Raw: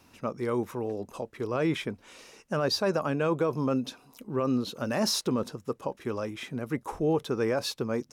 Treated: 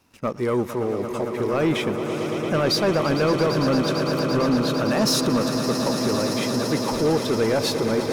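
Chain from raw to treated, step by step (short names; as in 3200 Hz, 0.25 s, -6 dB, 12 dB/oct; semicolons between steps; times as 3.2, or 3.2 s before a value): swelling echo 0.113 s, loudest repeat 8, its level -13 dB; sample leveller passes 2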